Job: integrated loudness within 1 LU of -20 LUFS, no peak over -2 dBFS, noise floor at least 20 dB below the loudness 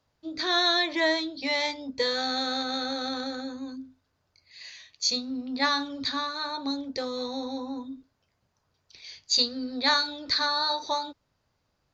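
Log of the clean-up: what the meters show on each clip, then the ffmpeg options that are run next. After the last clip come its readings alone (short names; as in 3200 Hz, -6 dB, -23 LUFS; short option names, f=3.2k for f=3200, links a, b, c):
loudness -27.5 LUFS; peak -10.0 dBFS; loudness target -20.0 LUFS
-> -af "volume=7.5dB"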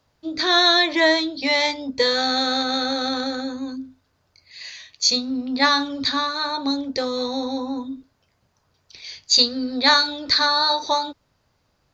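loudness -20.0 LUFS; peak -2.5 dBFS; noise floor -68 dBFS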